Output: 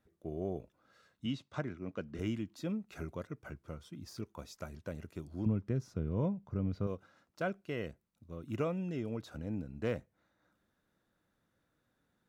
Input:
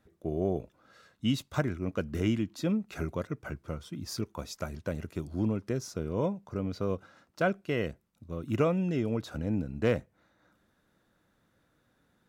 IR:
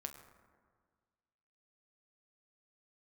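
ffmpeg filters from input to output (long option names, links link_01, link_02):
-filter_complex "[0:a]deesser=0.95,asettb=1/sr,asplit=3[link_01][link_02][link_03];[link_01]atrim=end=1.264[link_04];[link_02]atrim=start=1.26:end=2.19,asetpts=PTS-STARTPTS,afade=type=in:duration=0.004:curve=qsin,afade=type=out:start_time=0.926:duration=0.004:curve=qsin,highpass=110,lowpass=5200[link_05];[link_03]atrim=start=2.186[link_06];[link_04][link_05]acrossfade=duration=0.004:curve1=hsin:curve2=qsin[link_07];[link_07][link_06]acrossfade=duration=0.004:curve1=qsin:curve2=hsin,asettb=1/sr,asplit=3[link_08][link_09][link_10];[link_08]atrim=end=5.464[link_11];[link_09]atrim=start=5.46:end=6.87,asetpts=PTS-STARTPTS,afade=type=in:duration=0.004:curve=qsin,afade=type=out:start_time=1.406:duration=0.004:curve=qsin,bass=frequency=250:gain=10,treble=frequency=4000:gain=-9[link_12];[link_10]atrim=start=6.866[link_13];[link_11][link_12]acrossfade=duration=0.004:curve1=hsin:curve2=qsin[link_14];[link_14][link_13]acrossfade=duration=0.004:curve1=qsin:curve2=hsin,volume=-8dB"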